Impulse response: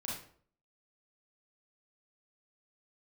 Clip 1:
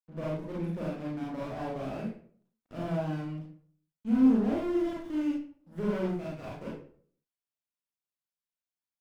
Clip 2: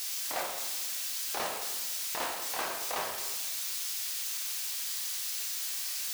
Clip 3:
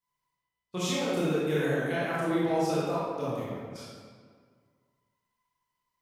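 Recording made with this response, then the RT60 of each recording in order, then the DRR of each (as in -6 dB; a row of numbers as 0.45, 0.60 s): 1; 0.55, 1.2, 1.9 s; -5.5, 0.0, -8.5 dB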